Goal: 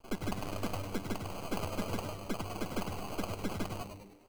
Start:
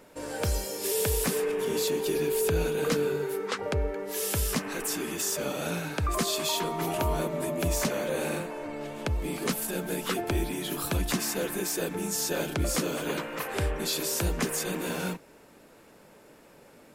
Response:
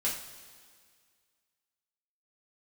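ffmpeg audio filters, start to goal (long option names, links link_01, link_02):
-filter_complex "[0:a]equalizer=frequency=690:width_type=o:width=2.2:gain=-14.5,asetrate=174195,aresample=44100,acrusher=samples=24:mix=1:aa=0.000001,aeval=exprs='max(val(0),0)':channel_layout=same,asplit=2[link_01][link_02];[link_02]asplit=6[link_03][link_04][link_05][link_06][link_07][link_08];[link_03]adelay=101,afreqshift=-100,volume=-7dB[link_09];[link_04]adelay=202,afreqshift=-200,volume=-13dB[link_10];[link_05]adelay=303,afreqshift=-300,volume=-19dB[link_11];[link_06]adelay=404,afreqshift=-400,volume=-25.1dB[link_12];[link_07]adelay=505,afreqshift=-500,volume=-31.1dB[link_13];[link_08]adelay=606,afreqshift=-600,volume=-37.1dB[link_14];[link_09][link_10][link_11][link_12][link_13][link_14]amix=inputs=6:normalize=0[link_15];[link_01][link_15]amix=inputs=2:normalize=0"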